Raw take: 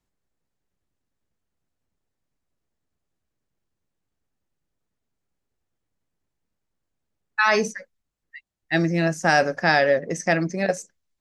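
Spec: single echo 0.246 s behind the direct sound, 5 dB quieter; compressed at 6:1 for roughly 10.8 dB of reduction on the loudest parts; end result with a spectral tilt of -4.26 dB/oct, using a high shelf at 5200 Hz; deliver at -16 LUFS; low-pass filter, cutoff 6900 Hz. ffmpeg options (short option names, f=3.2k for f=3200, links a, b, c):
-af "lowpass=6.9k,highshelf=f=5.2k:g=7,acompressor=threshold=-25dB:ratio=6,aecho=1:1:246:0.562,volume=13dB"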